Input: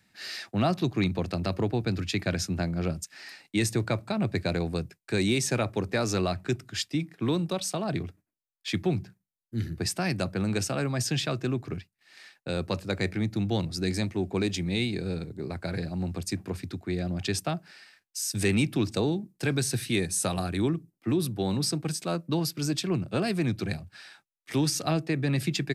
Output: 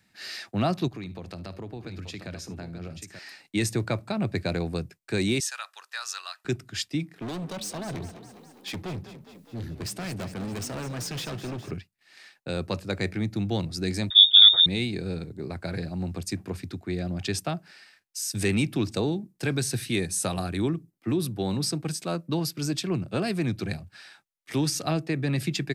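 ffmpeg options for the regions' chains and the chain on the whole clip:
-filter_complex "[0:a]asettb=1/sr,asplit=3[s0][s1][s2];[s0]atrim=end=0.884[s3];[s1]atrim=start=0.88:end=3.19,asetpts=PTS-STARTPTS,afade=t=in:d=0.004:c=qsin,afade=t=out:st=2.306:d=0.004:c=qsin,acompressor=threshold=0.0126:ratio=3:attack=3.2:release=140:knee=1:detection=peak,aecho=1:1:55|74|884:0.1|0.1|0.398,atrim=end_sample=101871[s4];[s2]atrim=start=3.186[s5];[s3][s4]acrossfade=d=0.004:c1=hsin:c2=qsin[s6];[s6][s5]acrossfade=d=0.004:c1=qsin:c2=hsin,asettb=1/sr,asplit=3[s7][s8][s9];[s7]atrim=end=5.404[s10];[s8]atrim=start=5.4:end=6.45,asetpts=PTS-STARTPTS,afade=t=in:d=0.004:c=qsin,afade=t=out:st=1.046:d=0.004:c=qsin,highpass=f=1200:w=0.5412,highpass=f=1200:w=1.3066,equalizer=f=2200:w=7.4:g=-14[s11];[s9]atrim=start=6.446[s12];[s10][s11]acrossfade=d=0.004:c1=hsin:c2=qsin[s13];[s13][s12]acrossfade=d=0.004:c1=qsin:c2=hsin,asettb=1/sr,asplit=3[s14][s15][s16];[s14]atrim=end=7.164[s17];[s15]atrim=start=7.16:end=11.71,asetpts=PTS-STARTPTS,afade=t=in:d=0.004:c=qsin,afade=t=out:st=4.546:d=0.004:c=qsin,acompressor=mode=upward:threshold=0.00501:ratio=2.5:attack=3.2:release=140:knee=2.83:detection=peak,asoftclip=type=hard:threshold=0.0266,asplit=8[s18][s19][s20][s21][s22][s23][s24][s25];[s19]adelay=205,afreqshift=35,volume=0.224[s26];[s20]adelay=410,afreqshift=70,volume=0.141[s27];[s21]adelay=615,afreqshift=105,volume=0.0891[s28];[s22]adelay=820,afreqshift=140,volume=0.0562[s29];[s23]adelay=1025,afreqshift=175,volume=0.0351[s30];[s24]adelay=1230,afreqshift=210,volume=0.0221[s31];[s25]adelay=1435,afreqshift=245,volume=0.014[s32];[s18][s26][s27][s28][s29][s30][s31][s32]amix=inputs=8:normalize=0,atrim=end_sample=200655[s33];[s16]atrim=start=11.706[s34];[s17][s33]acrossfade=d=0.004:c1=hsin:c2=qsin[s35];[s35][s34]acrossfade=d=0.004:c1=qsin:c2=hsin,asettb=1/sr,asplit=3[s36][s37][s38];[s36]atrim=end=14.104[s39];[s37]atrim=start=14.1:end=14.66,asetpts=PTS-STARTPTS,afade=t=in:d=0.004:c=qsin,afade=t=out:st=0.556:d=0.004:c=qsin,lowshelf=f=580:t=q:w=1.5:g=12.5,lowpass=f=3200:t=q:w=0.5098,lowpass=f=3200:t=q:w=0.6013,lowpass=f=3200:t=q:w=0.9,lowpass=f=3200:t=q:w=2.563,afreqshift=-3800[s40];[s38]atrim=start=14.656[s41];[s39][s40]acrossfade=d=0.004:c1=hsin:c2=qsin[s42];[s42][s41]acrossfade=d=0.004:c1=qsin:c2=hsin"

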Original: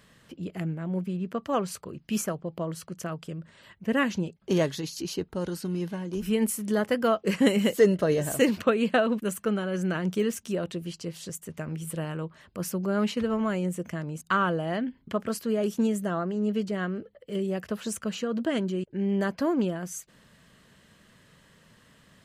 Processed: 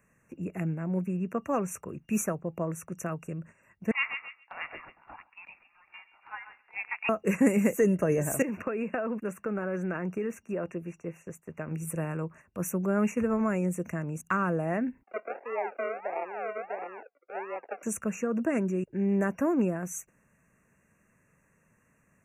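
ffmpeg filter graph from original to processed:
-filter_complex "[0:a]asettb=1/sr,asplit=3[s0][s1][s2];[s0]atrim=end=3.914[s3];[s1]atrim=start=3.91:end=7.09,asetpts=PTS-STARTPTS,afade=t=in:d=0.004:c=qsin,afade=t=out:st=3.176:d=0.004:c=qsin,asplit=2[s4][s5];[s5]adelay=137,lowpass=f=1400:p=1,volume=0.596,asplit=2[s6][s7];[s7]adelay=137,lowpass=f=1400:p=1,volume=0.55,asplit=2[s8][s9];[s9]adelay=137,lowpass=f=1400:p=1,volume=0.55,asplit=2[s10][s11];[s11]adelay=137,lowpass=f=1400:p=1,volume=0.55,asplit=2[s12][s13];[s13]adelay=137,lowpass=f=1400:p=1,volume=0.55,asplit=2[s14][s15];[s15]adelay=137,lowpass=f=1400:p=1,volume=0.55,asplit=2[s16][s17];[s17]adelay=137,lowpass=f=1400:p=1,volume=0.55[s18];[s4][s6][s8][s10][s12][s14][s16][s18]amix=inputs=8:normalize=0,atrim=end_sample=140238,lowpass=f=3300:t=q:w=0.5098,lowpass=f=3300:t=q:w=0.6013,lowpass=f=3300:t=q:w=0.9,lowpass=f=3300:t=q:w=2.563,afreqshift=-3900[s19];[s2]atrim=start=7.086[s20];[s3][s19]acrossfade=d=0.004:c1=hsin:c2=qsin[s21];[s21][s20]acrossfade=d=0.004:c1=qsin:c2=hsin,asettb=1/sr,asplit=3[s22][s23][s24];[s22]atrim=end=8.424[s25];[s23]atrim=start=8.42:end=11.71,asetpts=PTS-STARTPTS,afade=t=in:d=0.004:c=qsin,afade=t=out:st=3.286:d=0.004:c=qsin,bass=f=250:g=-5,treble=f=4000:g=-15,acompressor=threshold=0.0447:ratio=6:attack=3.2:release=140:knee=1:detection=peak[s26];[s24]atrim=start=11.706[s27];[s25][s26]acrossfade=d=0.004:c1=hsin:c2=qsin[s28];[s28][s27]acrossfade=d=0.004:c1=qsin:c2=hsin,asettb=1/sr,asplit=3[s29][s30][s31];[s29]atrim=end=15.034[s32];[s30]atrim=start=15.03:end=17.83,asetpts=PTS-STARTPTS,afade=t=in:d=0.004:c=qsin,afade=t=out:st=2.796:d=0.004:c=qsin,acrusher=samples=40:mix=1:aa=0.000001:lfo=1:lforange=24:lforate=1.5,highpass=f=490:w=0.5412,highpass=f=490:w=1.3066,equalizer=f=740:t=q:w=4:g=3,equalizer=f=1100:t=q:w=4:g=-8,equalizer=f=1800:t=q:w=4:g=-5,lowpass=f=2100:w=0.5412,lowpass=f=2100:w=1.3066[s33];[s31]atrim=start=17.826[s34];[s32][s33]acrossfade=d=0.004:c1=hsin:c2=qsin[s35];[s35][s34]acrossfade=d=0.004:c1=qsin:c2=hsin,afftfilt=real='re*(1-between(b*sr/4096,2800,5700))':imag='im*(1-between(b*sr/4096,2800,5700))':win_size=4096:overlap=0.75,agate=range=0.355:threshold=0.00398:ratio=16:detection=peak,acrossover=split=310|3000[s36][s37][s38];[s37]acompressor=threshold=0.0562:ratio=6[s39];[s36][s39][s38]amix=inputs=3:normalize=0"

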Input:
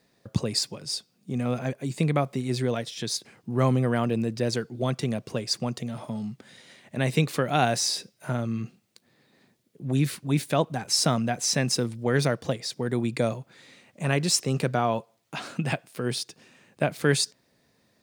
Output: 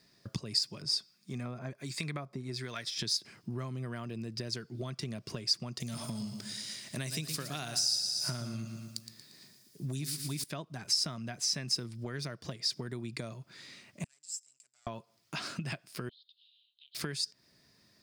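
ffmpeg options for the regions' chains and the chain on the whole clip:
-filter_complex "[0:a]asettb=1/sr,asplit=3[s0][s1][s2];[s0]atrim=end=0.824[s3];[s1]atrim=start=0.82:end=2.99,asetpts=PTS-STARTPTS,afade=t=in:d=0.004:c=qsin,afade=t=out:st=2.166:d=0.004:c=qsin,equalizer=f=1300:w=0.45:g=4.5,bandreject=f=2900:w=10,acrossover=split=1200[s4][s5];[s4]aeval=exprs='val(0)*(1-0.7/2+0.7/2*cos(2*PI*1.3*n/s))':c=same[s6];[s5]aeval=exprs='val(0)*(1-0.7/2-0.7/2*cos(2*PI*1.3*n/s))':c=same[s7];[s6][s7]amix=inputs=2:normalize=0[s8];[s2]atrim=start=2.986[s9];[s3][s8]acrossfade=d=0.004:c1=hsin:c2=qsin[s10];[s10][s9]acrossfade=d=0.004:c1=qsin:c2=hsin,asettb=1/sr,asplit=3[s11][s12][s13];[s11]atrim=end=5.804[s14];[s12]atrim=start=5.8:end=10.44,asetpts=PTS-STARTPTS,afade=t=in:d=0.004:c=qsin,afade=t=out:st=4.636:d=0.004:c=qsin,bass=f=250:g=1,treble=f=4000:g=14,aecho=1:1:116|232|348|464|580:0.355|0.167|0.0784|0.0368|0.0173,atrim=end_sample=204624[s15];[s13]atrim=start=10.436[s16];[s14][s15]acrossfade=d=0.004:c1=hsin:c2=qsin[s17];[s17][s16]acrossfade=d=0.004:c1=qsin:c2=hsin,asettb=1/sr,asplit=3[s18][s19][s20];[s18]atrim=end=14.044[s21];[s19]atrim=start=14.04:end=14.87,asetpts=PTS-STARTPTS,afade=t=in:d=0.004:c=qsin,afade=t=out:st=0.826:d=0.004:c=qsin,aeval=exprs='max(val(0),0)':c=same,bandpass=f=7600:t=q:w=17[s22];[s20]atrim=start=14.866[s23];[s21][s22]acrossfade=d=0.004:c1=hsin:c2=qsin[s24];[s24][s23]acrossfade=d=0.004:c1=qsin:c2=hsin,asettb=1/sr,asplit=3[s25][s26][s27];[s25]atrim=end=16.094[s28];[s26]atrim=start=16.09:end=16.95,asetpts=PTS-STARTPTS,afade=t=in:d=0.004:c=qsin,afade=t=out:st=0.856:d=0.004:c=qsin,asuperpass=centerf=3500:order=8:qfactor=3.1,acompressor=threshold=0.00178:ratio=6:attack=3.2:release=140:knee=1:detection=peak[s29];[s27]atrim=start=16.946[s30];[s28][s29]acrossfade=d=0.004:c1=hsin:c2=qsin[s31];[s31][s30]acrossfade=d=0.004:c1=qsin:c2=hsin,acompressor=threshold=0.0224:ratio=12,equalizer=f=250:t=o:w=0.33:g=-4,equalizer=f=500:t=o:w=0.33:g=-10,equalizer=f=800:t=o:w=0.33:g=-8,equalizer=f=5000:t=o:w=0.33:g=10"

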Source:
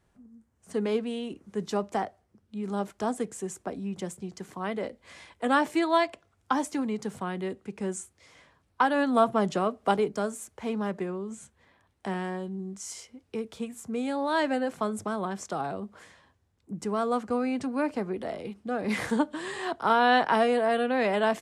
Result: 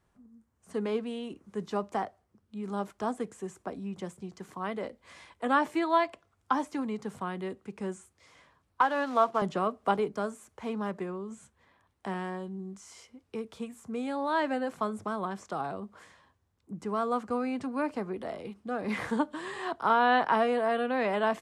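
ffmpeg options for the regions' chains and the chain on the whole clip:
-filter_complex "[0:a]asettb=1/sr,asplit=3[s0][s1][s2];[s0]atrim=end=8.814[s3];[s1]atrim=start=8.81:end=9.42,asetpts=PTS-STARTPTS,afade=t=in:d=0.004:c=qsin,afade=t=out:st=0.606:d=0.004:c=qsin,acrusher=bits=5:mode=log:mix=0:aa=0.000001,highpass=350,lowpass=6000[s4];[s2]atrim=start=9.416[s5];[s3][s4]acrossfade=d=0.004:c1=hsin:c2=qsin[s6];[s6][s5]acrossfade=d=0.004:c1=qsin:c2=hsin,acrossover=split=3700[s7][s8];[s8]acompressor=threshold=0.00398:ratio=4:attack=1:release=60[s9];[s7][s9]amix=inputs=2:normalize=0,equalizer=f=1100:t=o:w=0.6:g=4.5,volume=0.668"

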